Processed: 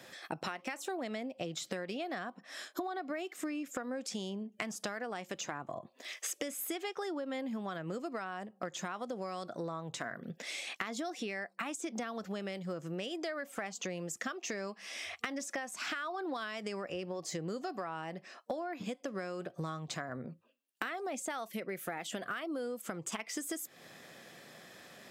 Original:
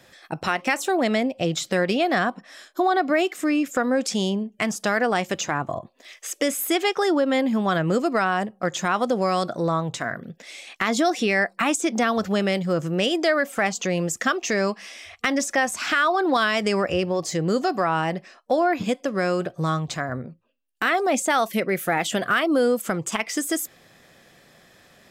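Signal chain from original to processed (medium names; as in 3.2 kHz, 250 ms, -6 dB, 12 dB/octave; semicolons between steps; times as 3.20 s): high-pass 150 Hz 12 dB/octave; compression 20:1, threshold -35 dBFS, peak gain reduction 20 dB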